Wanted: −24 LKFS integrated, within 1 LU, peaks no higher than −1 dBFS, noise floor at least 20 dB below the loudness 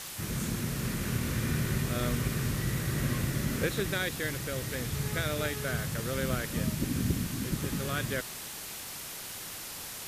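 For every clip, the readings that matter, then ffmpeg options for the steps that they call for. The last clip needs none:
background noise floor −42 dBFS; target noise floor −53 dBFS; integrated loudness −32.5 LKFS; sample peak −15.5 dBFS; target loudness −24.0 LKFS
→ -af "afftdn=noise_reduction=11:noise_floor=-42"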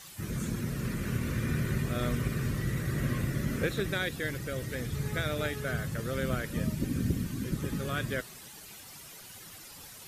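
background noise floor −49 dBFS; target noise floor −53 dBFS
→ -af "afftdn=noise_reduction=6:noise_floor=-49"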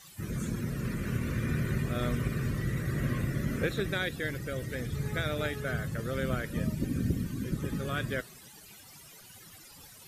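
background noise floor −52 dBFS; target noise floor −53 dBFS
→ -af "afftdn=noise_reduction=6:noise_floor=-52"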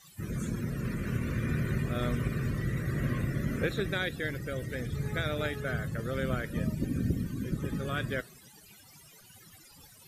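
background noise floor −56 dBFS; integrated loudness −33.0 LKFS; sample peak −16.0 dBFS; target loudness −24.0 LKFS
→ -af "volume=9dB"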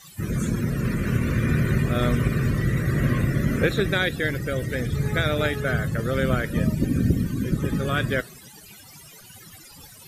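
integrated loudness −24.0 LKFS; sample peak −7.0 dBFS; background noise floor −47 dBFS

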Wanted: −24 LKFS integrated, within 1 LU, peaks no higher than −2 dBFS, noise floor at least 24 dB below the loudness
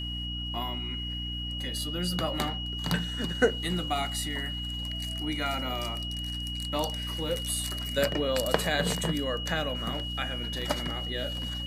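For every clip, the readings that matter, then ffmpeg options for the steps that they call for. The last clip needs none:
mains hum 60 Hz; hum harmonics up to 300 Hz; level of the hum −34 dBFS; interfering tone 2,900 Hz; level of the tone −35 dBFS; integrated loudness −30.5 LKFS; sample peak −7.0 dBFS; target loudness −24.0 LKFS
→ -af "bandreject=frequency=60:width_type=h:width=4,bandreject=frequency=120:width_type=h:width=4,bandreject=frequency=180:width_type=h:width=4,bandreject=frequency=240:width_type=h:width=4,bandreject=frequency=300:width_type=h:width=4"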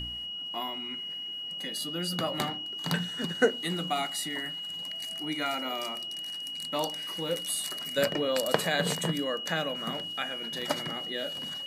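mains hum none found; interfering tone 2,900 Hz; level of the tone −35 dBFS
→ -af "bandreject=frequency=2900:width=30"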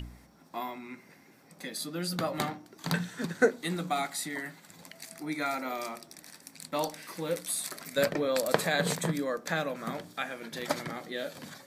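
interfering tone none found; integrated loudness −32.5 LKFS; sample peak −7.0 dBFS; target loudness −24.0 LKFS
→ -af "volume=8.5dB,alimiter=limit=-2dB:level=0:latency=1"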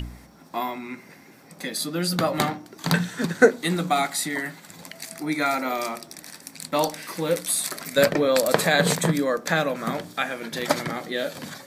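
integrated loudness −24.5 LKFS; sample peak −2.0 dBFS; background noise floor −49 dBFS

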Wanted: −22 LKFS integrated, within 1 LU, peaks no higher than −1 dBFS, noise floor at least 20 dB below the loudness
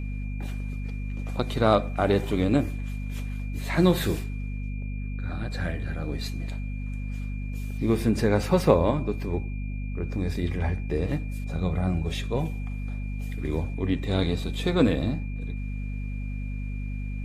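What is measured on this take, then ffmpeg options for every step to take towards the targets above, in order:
mains hum 50 Hz; hum harmonics up to 250 Hz; level of the hum −29 dBFS; interfering tone 2,400 Hz; level of the tone −47 dBFS; integrated loudness −28.0 LKFS; sample peak −4.0 dBFS; target loudness −22.0 LKFS
→ -af "bandreject=frequency=50:width_type=h:width=6,bandreject=frequency=100:width_type=h:width=6,bandreject=frequency=150:width_type=h:width=6,bandreject=frequency=200:width_type=h:width=6,bandreject=frequency=250:width_type=h:width=6"
-af "bandreject=frequency=2400:width=30"
-af "volume=6dB,alimiter=limit=-1dB:level=0:latency=1"

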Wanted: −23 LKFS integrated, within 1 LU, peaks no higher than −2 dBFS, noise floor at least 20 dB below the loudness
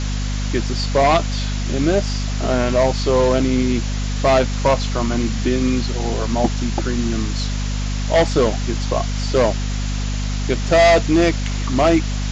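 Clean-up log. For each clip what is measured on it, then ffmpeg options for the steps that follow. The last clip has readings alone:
mains hum 50 Hz; hum harmonics up to 250 Hz; level of the hum −19 dBFS; background noise floor −22 dBFS; target noise floor −39 dBFS; integrated loudness −19.0 LKFS; sample peak −4.0 dBFS; target loudness −23.0 LKFS
→ -af "bandreject=frequency=50:width_type=h:width=6,bandreject=frequency=100:width_type=h:width=6,bandreject=frequency=150:width_type=h:width=6,bandreject=frequency=200:width_type=h:width=6,bandreject=frequency=250:width_type=h:width=6"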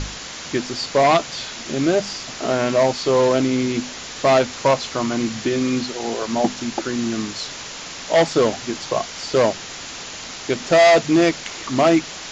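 mains hum none found; background noise floor −34 dBFS; target noise floor −40 dBFS
→ -af "afftdn=noise_reduction=6:noise_floor=-34"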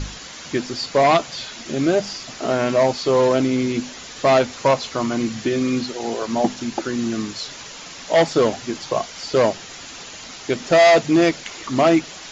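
background noise floor −37 dBFS; target noise floor −40 dBFS
→ -af "afftdn=noise_reduction=6:noise_floor=-37"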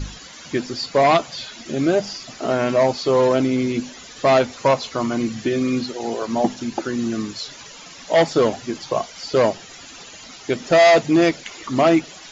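background noise floor −41 dBFS; integrated loudness −20.0 LKFS; sample peak −6.0 dBFS; target loudness −23.0 LKFS
→ -af "volume=-3dB"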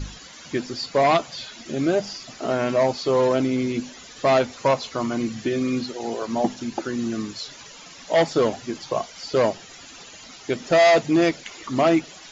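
integrated loudness −23.0 LKFS; sample peak −9.0 dBFS; background noise floor −44 dBFS

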